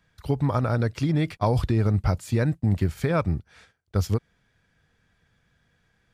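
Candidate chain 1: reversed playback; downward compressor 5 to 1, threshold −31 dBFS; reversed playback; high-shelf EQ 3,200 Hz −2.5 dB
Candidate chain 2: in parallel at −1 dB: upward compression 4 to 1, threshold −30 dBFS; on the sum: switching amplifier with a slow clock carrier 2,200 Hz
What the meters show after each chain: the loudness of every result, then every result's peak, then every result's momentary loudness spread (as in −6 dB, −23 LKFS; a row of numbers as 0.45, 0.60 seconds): −35.5, −21.0 LKFS; −19.5, −6.5 dBFS; 5, 11 LU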